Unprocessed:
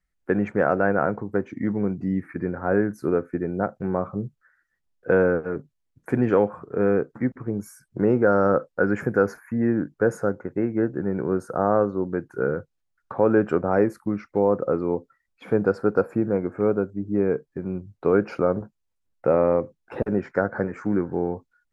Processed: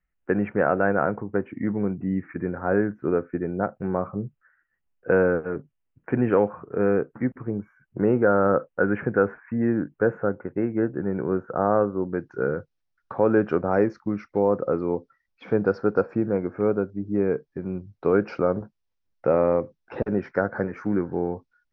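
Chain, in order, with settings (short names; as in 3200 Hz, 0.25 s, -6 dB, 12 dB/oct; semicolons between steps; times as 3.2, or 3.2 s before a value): elliptic low-pass 2900 Hz, stop band 40 dB, from 12.12 s 5800 Hz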